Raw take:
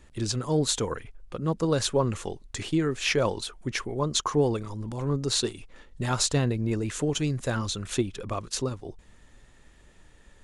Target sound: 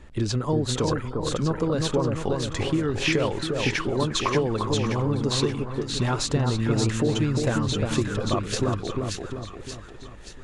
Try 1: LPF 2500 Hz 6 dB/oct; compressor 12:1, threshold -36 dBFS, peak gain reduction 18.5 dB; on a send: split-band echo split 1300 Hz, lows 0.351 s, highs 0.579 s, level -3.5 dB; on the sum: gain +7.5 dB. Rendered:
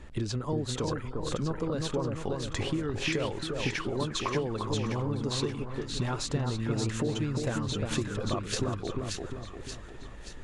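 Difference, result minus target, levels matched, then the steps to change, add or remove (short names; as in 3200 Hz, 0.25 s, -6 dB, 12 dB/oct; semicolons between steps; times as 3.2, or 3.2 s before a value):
compressor: peak gain reduction +7.5 dB
change: compressor 12:1, threshold -28 dBFS, peak gain reduction 11 dB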